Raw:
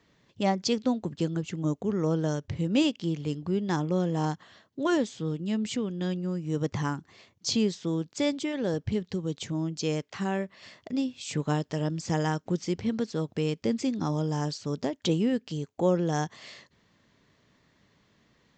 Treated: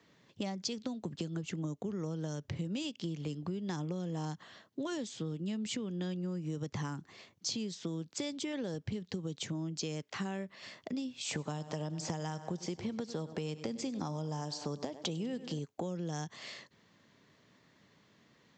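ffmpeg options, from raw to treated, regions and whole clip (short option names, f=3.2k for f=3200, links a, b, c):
-filter_complex "[0:a]asettb=1/sr,asplit=3[a][b][c];[a]atrim=end=11.244[d];[b]atrim=start=11.24:end=15.59,asetpts=PTS-STARTPTS,afade=t=in:d=0.004:c=qsin,afade=t=out:st=4.346:d=0.004:c=qsin,equalizer=f=770:w=0.74:g=10,aecho=1:1:98|196|294|392|490:0.126|0.0705|0.0395|0.0221|0.0124,atrim=end_sample=191835[e];[c]atrim=start=15.586[f];[d][e]acrossfade=d=0.004:c1=hsin:c2=qsin[g];[g][f]acrossfade=d=0.004:c1=qsin:c2=hsin,acrossover=split=170|3000[h][i][j];[i]acompressor=threshold=-32dB:ratio=6[k];[h][k][j]amix=inputs=3:normalize=0,highpass=110,acompressor=threshold=-34dB:ratio=6"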